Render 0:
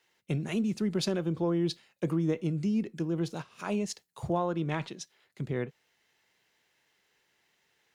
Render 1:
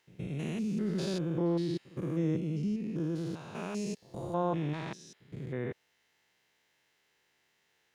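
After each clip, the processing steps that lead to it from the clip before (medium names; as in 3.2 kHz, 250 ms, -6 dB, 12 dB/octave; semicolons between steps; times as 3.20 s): spectrogram pixelated in time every 200 ms; pre-echo 118 ms -19 dB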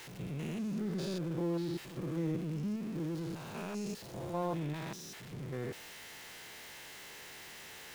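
jump at every zero crossing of -38.5 dBFS; trim -5.5 dB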